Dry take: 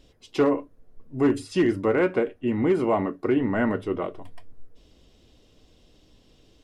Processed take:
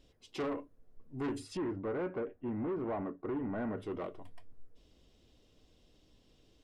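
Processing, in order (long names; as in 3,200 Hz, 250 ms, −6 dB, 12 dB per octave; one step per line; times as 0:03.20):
soft clipping −23.5 dBFS, distortion −9 dB
0:01.57–0:03.78: low-pass filter 1,500 Hz 12 dB per octave
level −8.5 dB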